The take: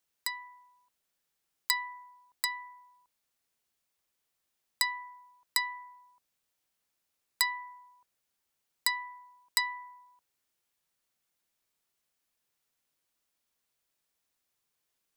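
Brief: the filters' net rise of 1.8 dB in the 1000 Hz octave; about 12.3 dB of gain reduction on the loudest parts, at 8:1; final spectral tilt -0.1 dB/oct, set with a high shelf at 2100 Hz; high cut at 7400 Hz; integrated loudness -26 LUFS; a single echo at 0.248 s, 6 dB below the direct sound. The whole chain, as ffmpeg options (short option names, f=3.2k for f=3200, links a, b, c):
-af "lowpass=7.4k,equalizer=f=1k:t=o:g=3.5,highshelf=f=2.1k:g=-9,acompressor=threshold=-42dB:ratio=8,aecho=1:1:248:0.501,volume=21.5dB"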